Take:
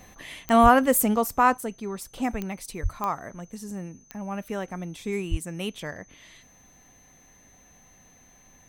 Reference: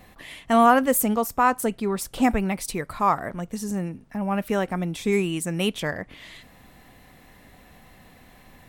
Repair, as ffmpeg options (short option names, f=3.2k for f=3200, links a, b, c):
-filter_complex "[0:a]adeclick=t=4,bandreject=f=6.2k:w=30,asplit=3[a][b][c];[a]afade=t=out:st=0.62:d=0.02[d];[b]highpass=f=140:w=0.5412,highpass=f=140:w=1.3066,afade=t=in:st=0.62:d=0.02,afade=t=out:st=0.74:d=0.02[e];[c]afade=t=in:st=0.74:d=0.02[f];[d][e][f]amix=inputs=3:normalize=0,asplit=3[g][h][i];[g]afade=t=out:st=2.82:d=0.02[j];[h]highpass=f=140:w=0.5412,highpass=f=140:w=1.3066,afade=t=in:st=2.82:d=0.02,afade=t=out:st=2.94:d=0.02[k];[i]afade=t=in:st=2.94:d=0.02[l];[j][k][l]amix=inputs=3:normalize=0,asplit=3[m][n][o];[m]afade=t=out:st=5.3:d=0.02[p];[n]highpass=f=140:w=0.5412,highpass=f=140:w=1.3066,afade=t=in:st=5.3:d=0.02,afade=t=out:st=5.42:d=0.02[q];[o]afade=t=in:st=5.42:d=0.02[r];[p][q][r]amix=inputs=3:normalize=0,asetnsamples=n=441:p=0,asendcmd='1.57 volume volume 7.5dB',volume=0dB"